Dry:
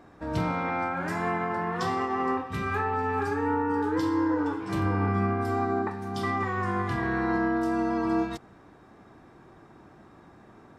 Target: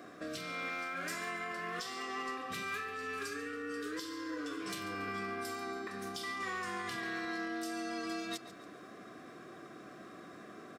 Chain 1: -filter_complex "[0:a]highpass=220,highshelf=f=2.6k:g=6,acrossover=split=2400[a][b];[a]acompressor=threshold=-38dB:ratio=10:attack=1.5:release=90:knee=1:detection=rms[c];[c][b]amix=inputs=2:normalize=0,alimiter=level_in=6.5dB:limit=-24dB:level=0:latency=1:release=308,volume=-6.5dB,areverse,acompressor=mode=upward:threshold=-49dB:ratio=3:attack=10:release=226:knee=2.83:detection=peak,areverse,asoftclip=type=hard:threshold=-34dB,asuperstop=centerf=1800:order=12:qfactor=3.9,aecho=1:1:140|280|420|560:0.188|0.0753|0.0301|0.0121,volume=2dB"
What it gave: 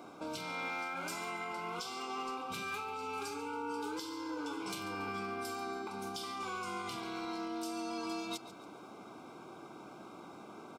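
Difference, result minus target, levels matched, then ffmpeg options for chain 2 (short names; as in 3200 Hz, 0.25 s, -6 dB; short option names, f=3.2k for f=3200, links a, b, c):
2000 Hz band -3.5 dB
-filter_complex "[0:a]highpass=220,highshelf=f=2.6k:g=6,acrossover=split=2400[a][b];[a]acompressor=threshold=-38dB:ratio=10:attack=1.5:release=90:knee=1:detection=rms[c];[c][b]amix=inputs=2:normalize=0,alimiter=level_in=6.5dB:limit=-24dB:level=0:latency=1:release=308,volume=-6.5dB,areverse,acompressor=mode=upward:threshold=-49dB:ratio=3:attack=10:release=226:knee=2.83:detection=peak,areverse,asoftclip=type=hard:threshold=-34dB,asuperstop=centerf=880:order=12:qfactor=3.9,aecho=1:1:140|280|420|560:0.188|0.0753|0.0301|0.0121,volume=2dB"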